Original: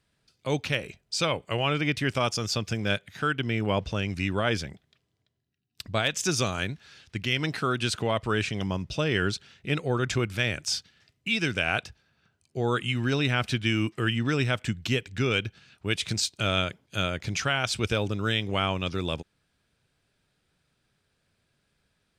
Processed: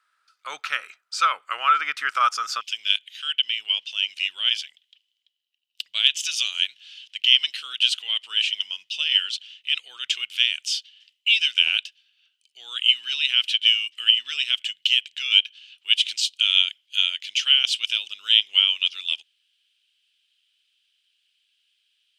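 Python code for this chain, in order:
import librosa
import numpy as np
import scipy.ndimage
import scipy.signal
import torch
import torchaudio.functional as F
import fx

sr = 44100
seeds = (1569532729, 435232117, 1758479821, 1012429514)

y = fx.highpass_res(x, sr, hz=fx.steps((0.0, 1300.0), (2.61, 3000.0)), q=9.4)
y = y * librosa.db_to_amplitude(-1.0)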